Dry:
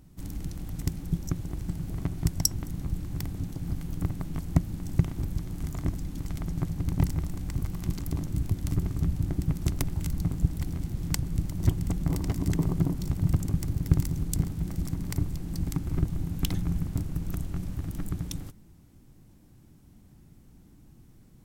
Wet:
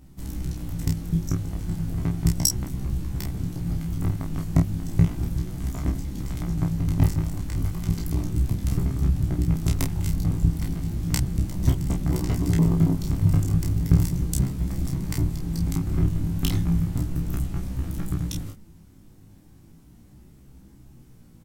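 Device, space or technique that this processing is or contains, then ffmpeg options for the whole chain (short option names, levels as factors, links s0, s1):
double-tracked vocal: -filter_complex "[0:a]asplit=2[s0][s1];[s1]adelay=30,volume=0.631[s2];[s0][s2]amix=inputs=2:normalize=0,flanger=delay=15.5:depth=3.8:speed=0.34,volume=2"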